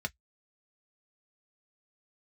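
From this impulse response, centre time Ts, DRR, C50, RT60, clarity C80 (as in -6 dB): 3 ms, 4.5 dB, 38.0 dB, no single decay rate, 56.5 dB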